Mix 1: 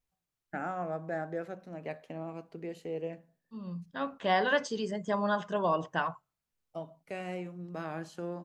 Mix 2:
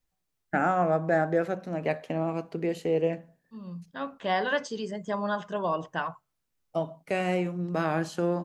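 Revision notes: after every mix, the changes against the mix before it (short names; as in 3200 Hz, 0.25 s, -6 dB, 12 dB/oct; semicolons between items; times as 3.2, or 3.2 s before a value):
first voice +11.0 dB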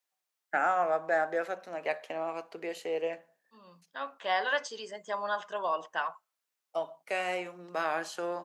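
master: add HPF 650 Hz 12 dB/oct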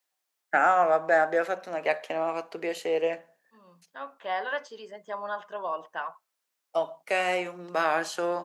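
first voice +6.0 dB; second voice: add LPF 1800 Hz 6 dB/oct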